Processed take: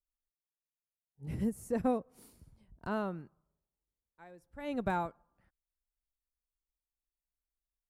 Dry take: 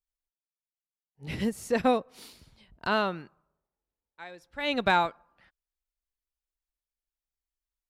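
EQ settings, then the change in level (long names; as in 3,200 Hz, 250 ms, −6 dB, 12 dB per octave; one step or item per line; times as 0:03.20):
drawn EQ curve 110 Hz 0 dB, 1,300 Hz −12 dB, 3,800 Hz −23 dB, 9,200 Hz −6 dB
0.0 dB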